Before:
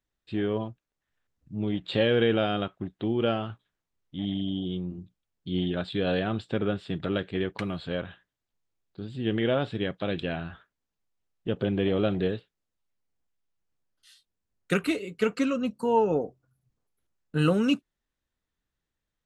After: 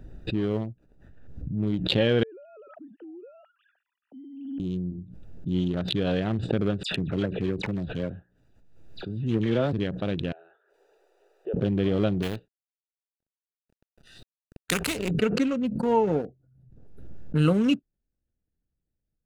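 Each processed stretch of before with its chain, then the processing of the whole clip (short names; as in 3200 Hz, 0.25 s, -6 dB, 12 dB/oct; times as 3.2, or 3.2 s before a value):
2.23–4.6 sine-wave speech + HPF 600 Hz 6 dB/oct + compressor 12:1, threshold -40 dBFS
6.83–9.73 dispersion lows, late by 81 ms, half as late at 2500 Hz + mismatched tape noise reduction encoder only
10.32–11.54 elliptic high-pass 390 Hz + compressor 2.5:1, threshold -41 dBFS
12.22–15.11 G.711 law mismatch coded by A + spectral compressor 2:1
whole clip: Wiener smoothing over 41 samples; tone controls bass +4 dB, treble +1 dB; backwards sustainer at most 46 dB/s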